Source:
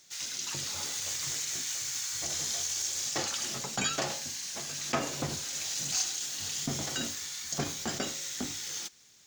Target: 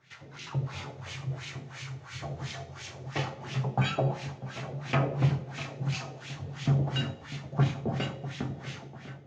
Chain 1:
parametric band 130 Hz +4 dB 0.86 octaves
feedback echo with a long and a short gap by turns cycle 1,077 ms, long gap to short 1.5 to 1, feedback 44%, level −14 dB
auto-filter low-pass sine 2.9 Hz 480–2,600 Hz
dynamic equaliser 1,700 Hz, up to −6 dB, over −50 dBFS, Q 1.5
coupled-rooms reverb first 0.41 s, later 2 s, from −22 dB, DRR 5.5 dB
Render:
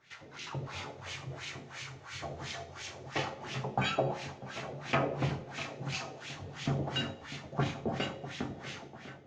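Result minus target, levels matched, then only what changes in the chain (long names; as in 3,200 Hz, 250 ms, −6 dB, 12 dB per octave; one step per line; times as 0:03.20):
125 Hz band −4.5 dB
change: parametric band 130 Hz +14 dB 0.86 octaves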